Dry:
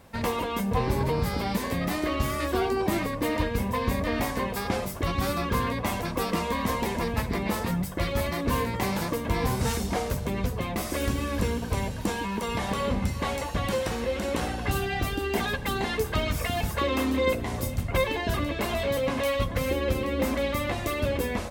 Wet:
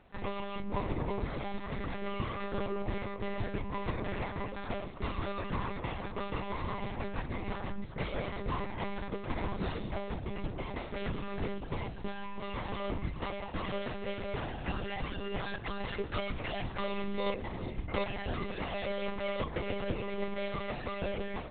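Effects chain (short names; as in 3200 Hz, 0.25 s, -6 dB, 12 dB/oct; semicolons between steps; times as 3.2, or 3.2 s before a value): monotone LPC vocoder at 8 kHz 200 Hz; gain -8 dB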